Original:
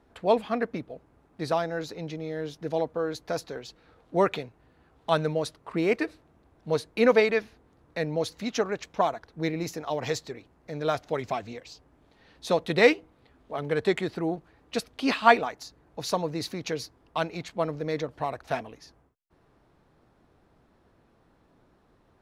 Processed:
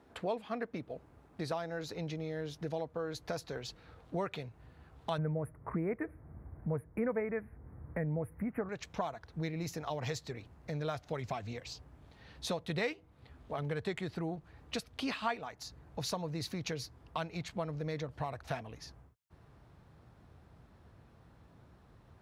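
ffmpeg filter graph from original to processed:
ffmpeg -i in.wav -filter_complex "[0:a]asettb=1/sr,asplit=3[link_01][link_02][link_03];[link_01]atrim=end=5.184[link_04];[link_02]atrim=start=5.18:end=8.69,asetpts=PTS-STARTPTS,afade=type=in:duration=0.004:curve=qsin,afade=type=out:start_time=3.506:duration=0.004:curve=qsin,asuperstop=centerf=4800:order=12:qfactor=0.64,lowshelf=frequency=430:gain=7.5[link_05];[link_03]atrim=start=8.686[link_06];[link_04][link_05]acrossfade=duration=0.004:curve1=hsin:curve2=qsin[link_07];[link_07][link_06]acrossfade=duration=0.004:curve1=qsin:curve2=hsin,highpass=74,asubboost=boost=4.5:cutoff=130,acompressor=threshold=-38dB:ratio=3,volume=1dB" out.wav

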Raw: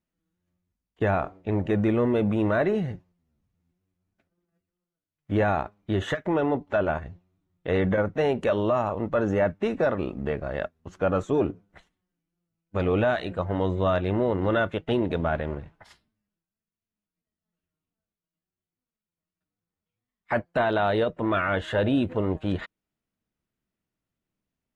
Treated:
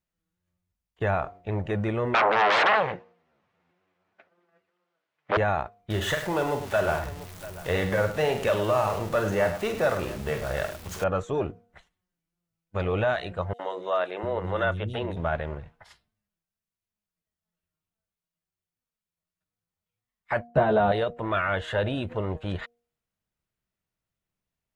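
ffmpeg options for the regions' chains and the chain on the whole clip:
ffmpeg -i in.wav -filter_complex "[0:a]asettb=1/sr,asplit=3[link_01][link_02][link_03];[link_01]atrim=end=2.144[link_04];[link_02]atrim=start=2.14:end=5.37,asetpts=PTS-STARTPTS,afade=type=in:duration=0.004:curve=qsin,afade=type=out:start_time=3.226:duration=0.004:curve=qsin,aeval=exprs='0.2*sin(PI/2*5.62*val(0)/0.2)':channel_layout=same,highpass=410,lowpass=2400[link_05];[link_03]atrim=start=5.366[link_06];[link_04][link_05]acrossfade=duration=0.004:curve1=hsin:curve2=qsin[link_07];[link_07][link_06]acrossfade=duration=0.004:curve1=qsin:curve2=hsin,asettb=1/sr,asplit=3[link_08][link_09][link_10];[link_08]atrim=end=5.904[link_11];[link_09]atrim=start=5.9:end=11.04,asetpts=PTS-STARTPTS,afade=type=in:duration=0.004:curve=qsin,afade=type=out:start_time=5.136:duration=0.004:curve=qsin,aeval=exprs='val(0)+0.5*0.0141*sgn(val(0))':channel_layout=same,highshelf=frequency=3500:gain=7,aecho=1:1:46|103|691:0.376|0.282|0.141,atrim=end_sample=226674[link_12];[link_10]atrim=start=11.036[link_13];[link_11][link_12]acrossfade=duration=0.004:curve1=hsin:curve2=qsin[link_14];[link_14][link_13]acrossfade=duration=0.004:curve1=qsin:curve2=hsin,asettb=1/sr,asplit=3[link_15][link_16][link_17];[link_15]atrim=end=13.534[link_18];[link_16]atrim=start=13.53:end=15.17,asetpts=PTS-STARTPTS,afade=type=in:duration=0.004:curve=qsin,afade=type=out:start_time=1.636:duration=0.004:curve=qsin,bandreject=frequency=94.75:width_type=h:width=4,bandreject=frequency=189.5:width_type=h:width=4,bandreject=frequency=284.25:width_type=h:width=4,bandreject=frequency=379:width_type=h:width=4,bandreject=frequency=473.75:width_type=h:width=4,acrossover=split=280|4600[link_19][link_20][link_21];[link_20]adelay=60[link_22];[link_19]adelay=700[link_23];[link_23][link_22][link_21]amix=inputs=3:normalize=0,atrim=end_sample=72324[link_24];[link_17]atrim=start=15.166[link_25];[link_18][link_24]acrossfade=duration=0.004:curve1=hsin:curve2=qsin[link_26];[link_26][link_25]acrossfade=duration=0.004:curve1=qsin:curve2=hsin,asettb=1/sr,asplit=3[link_27][link_28][link_29];[link_27]atrim=end=20.474[link_30];[link_28]atrim=start=20.47:end=20.92,asetpts=PTS-STARTPTS,afade=type=in:duration=0.004:curve=qsin,afade=type=out:start_time=0.446:duration=0.004:curve=qsin,highpass=42,tiltshelf=frequency=830:gain=10,asplit=2[link_31][link_32];[link_32]adelay=14,volume=-2.5dB[link_33];[link_31][link_33]amix=inputs=2:normalize=0,atrim=end_sample=19845[link_34];[link_29]atrim=start=20.916[link_35];[link_30][link_34]acrossfade=duration=0.004:curve1=hsin:curve2=qsin[link_36];[link_36][link_35]acrossfade=duration=0.004:curve1=qsin:curve2=hsin,equalizer=frequency=270:width=1.4:gain=-9.5,bandreject=frequency=236.9:width_type=h:width=4,bandreject=frequency=473.8:width_type=h:width=4,bandreject=frequency=710.7:width_type=h:width=4" out.wav

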